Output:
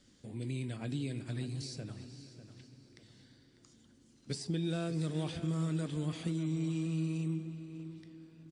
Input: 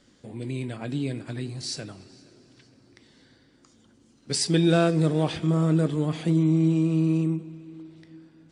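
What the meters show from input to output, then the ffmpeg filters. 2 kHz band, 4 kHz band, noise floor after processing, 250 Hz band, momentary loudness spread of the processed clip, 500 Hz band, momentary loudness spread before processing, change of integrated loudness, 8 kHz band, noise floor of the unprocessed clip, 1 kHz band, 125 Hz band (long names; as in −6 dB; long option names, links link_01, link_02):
−13.0 dB, −12.5 dB, −65 dBFS, −12.5 dB, 17 LU, −15.0 dB, 16 LU, −12.5 dB, −14.0 dB, −60 dBFS, −15.5 dB, −10.5 dB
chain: -filter_complex "[0:a]equalizer=frequency=840:width=0.37:gain=-8,acrossover=split=1100|7900[link_01][link_02][link_03];[link_01]acompressor=threshold=-31dB:ratio=4[link_04];[link_02]acompressor=threshold=-45dB:ratio=4[link_05];[link_03]acompressor=threshold=-58dB:ratio=4[link_06];[link_04][link_05][link_06]amix=inputs=3:normalize=0,asplit=2[link_07][link_08];[link_08]adelay=597,lowpass=frequency=3800:poles=1,volume=-12dB,asplit=2[link_09][link_10];[link_10]adelay=597,lowpass=frequency=3800:poles=1,volume=0.39,asplit=2[link_11][link_12];[link_12]adelay=597,lowpass=frequency=3800:poles=1,volume=0.39,asplit=2[link_13][link_14];[link_14]adelay=597,lowpass=frequency=3800:poles=1,volume=0.39[link_15];[link_09][link_11][link_13][link_15]amix=inputs=4:normalize=0[link_16];[link_07][link_16]amix=inputs=2:normalize=0,volume=-2dB"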